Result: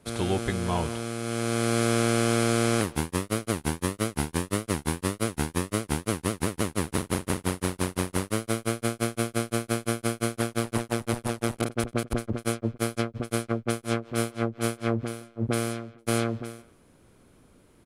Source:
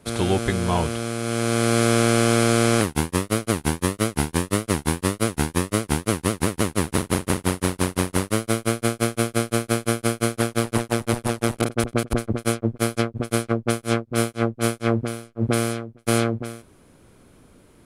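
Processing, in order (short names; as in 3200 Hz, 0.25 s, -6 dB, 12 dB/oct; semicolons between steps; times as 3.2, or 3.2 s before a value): speakerphone echo 0.17 s, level -17 dB; gain -5.5 dB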